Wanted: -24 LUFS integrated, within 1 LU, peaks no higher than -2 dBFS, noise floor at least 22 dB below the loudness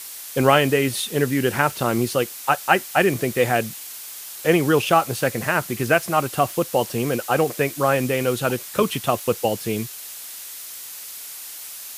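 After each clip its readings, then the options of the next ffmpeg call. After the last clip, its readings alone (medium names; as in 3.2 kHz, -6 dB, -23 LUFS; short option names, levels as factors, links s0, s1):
noise floor -37 dBFS; noise floor target -43 dBFS; loudness -21.0 LUFS; peak level -1.5 dBFS; loudness target -24.0 LUFS
-> -af "afftdn=nr=6:nf=-37"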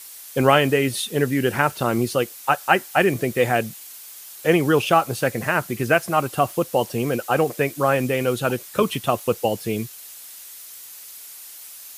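noise floor -41 dBFS; noise floor target -44 dBFS
-> -af "afftdn=nr=6:nf=-41"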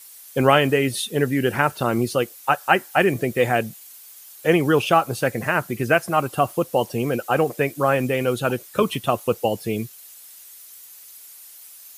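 noise floor -44 dBFS; loudness -21.5 LUFS; peak level -1.5 dBFS; loudness target -24.0 LUFS
-> -af "volume=0.75"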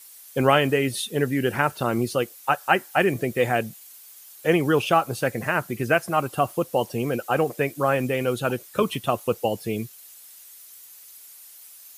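loudness -24.0 LUFS; peak level -4.0 dBFS; noise floor -47 dBFS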